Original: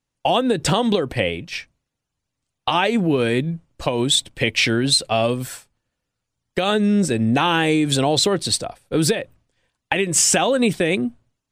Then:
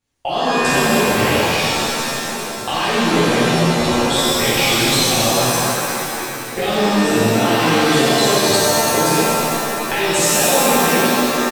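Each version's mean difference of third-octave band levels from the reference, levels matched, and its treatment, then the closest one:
15.5 dB: slap from a distant wall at 240 metres, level −23 dB
downward compressor 5 to 1, threshold −26 dBFS, peak gain reduction 12.5 dB
reverb with rising layers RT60 2.7 s, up +7 semitones, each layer −2 dB, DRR −11 dB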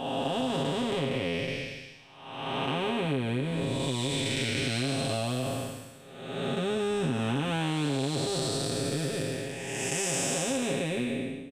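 11.5 dB: spectrum smeared in time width 614 ms
comb filter 7.4 ms, depth 70%
downward compressor, threshold −26 dBFS, peak gain reduction 11 dB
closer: second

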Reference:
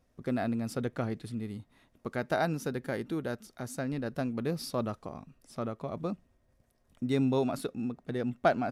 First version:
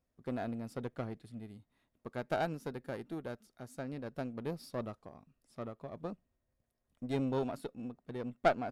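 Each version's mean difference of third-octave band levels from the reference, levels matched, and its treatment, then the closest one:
3.0 dB: one-sided soft clipper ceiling −30 dBFS
notch filter 6,000 Hz, Q 22
dynamic equaliser 630 Hz, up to +3 dB, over −45 dBFS, Q 0.95
expander for the loud parts 1.5 to 1, over −43 dBFS
level −1.5 dB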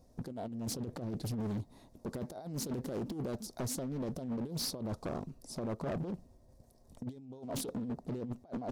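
8.0 dB: flat-topped bell 2,000 Hz −13.5 dB
compressor whose output falls as the input rises −37 dBFS, ratio −0.5
hard clipping −35 dBFS, distortion −10 dB
highs frequency-modulated by the lows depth 0.58 ms
level +2.5 dB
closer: first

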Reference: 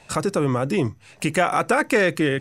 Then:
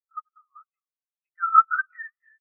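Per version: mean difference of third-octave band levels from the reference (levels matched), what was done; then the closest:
27.0 dB: delay that plays each chunk backwards 114 ms, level −11.5 dB
high-pass with resonance 1,300 Hz, resonance Q 3.6
on a send: echo with shifted repeats 252 ms, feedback 60%, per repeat −60 Hz, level −15.5 dB
on the sum: every bin expanded away from the loudest bin 4 to 1
level −1.5 dB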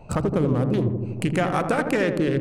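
7.0 dB: adaptive Wiener filter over 25 samples
low-shelf EQ 120 Hz +8 dB
downward compressor 3 to 1, threshold −29 dBFS, peak gain reduction 11 dB
on a send: feedback echo with a low-pass in the loop 81 ms, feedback 78%, low-pass 870 Hz, level −5 dB
on the sum: level +6 dB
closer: second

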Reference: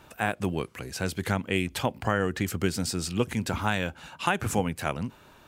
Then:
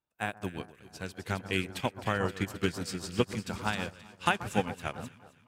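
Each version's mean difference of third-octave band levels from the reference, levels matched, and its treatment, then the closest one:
5.5 dB: dynamic equaliser 3,900 Hz, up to +4 dB, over −45 dBFS, Q 0.71
delay that swaps between a low-pass and a high-pass 132 ms, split 1,500 Hz, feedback 84%, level −7 dB
expander for the loud parts 2.5 to 1, over −46 dBFS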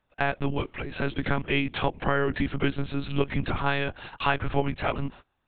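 9.5 dB: one-pitch LPC vocoder at 8 kHz 140 Hz
noise gate −45 dBFS, range −27 dB
in parallel at −2 dB: downward compressor, threshold −33 dBFS, peak gain reduction 14 dB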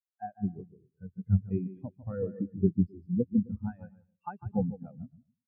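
21.0 dB: high-shelf EQ 4,500 Hz −5.5 dB
on a send: bouncing-ball delay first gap 150 ms, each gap 0.75×, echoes 5
on the sum: every bin expanded away from the loudest bin 4 to 1
level −3 dB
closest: first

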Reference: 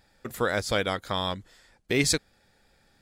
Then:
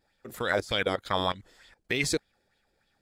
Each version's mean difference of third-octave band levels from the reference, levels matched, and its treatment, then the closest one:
3.0 dB: output level in coarse steps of 15 dB
auto-filter bell 3.3 Hz 320–3,500 Hz +11 dB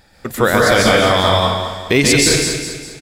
9.0 dB: repeating echo 203 ms, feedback 44%, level −10 dB
dense smooth reverb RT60 0.76 s, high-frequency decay 0.95×, pre-delay 120 ms, DRR −3.5 dB
boost into a limiter +12.5 dB
level −1 dB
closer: first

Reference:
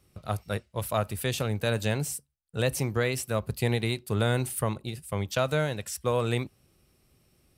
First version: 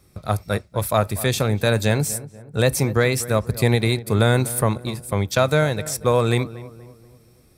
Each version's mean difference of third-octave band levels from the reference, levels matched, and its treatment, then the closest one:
2.0 dB: notch filter 2,900 Hz, Q 5.1
on a send: feedback echo with a low-pass in the loop 242 ms, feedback 46%, low-pass 1,500 Hz, level −16 dB
on the sum: level +8.5 dB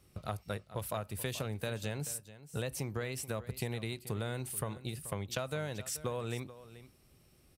4.0 dB: downward compressor 6 to 1, threshold −34 dBFS, peak gain reduction 13 dB
on a send: single-tap delay 432 ms −15.5 dB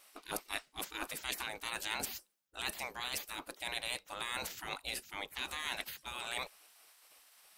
13.0 dB: reversed playback
downward compressor, threshold −33 dBFS, peak gain reduction 12.5 dB
reversed playback
gate on every frequency bin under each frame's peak −20 dB weak
level +10 dB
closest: first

